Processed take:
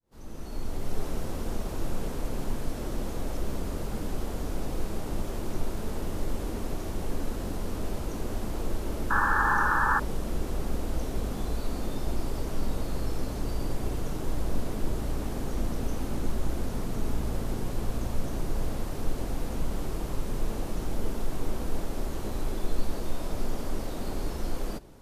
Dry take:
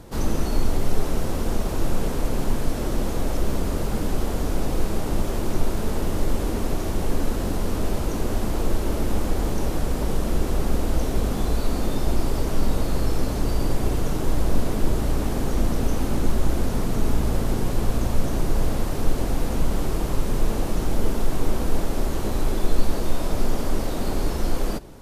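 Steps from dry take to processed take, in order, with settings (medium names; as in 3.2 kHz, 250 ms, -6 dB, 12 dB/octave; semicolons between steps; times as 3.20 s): fade-in on the opening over 1.03 s; painted sound noise, 9.10–10.00 s, 800–1800 Hz -17 dBFS; trim -8 dB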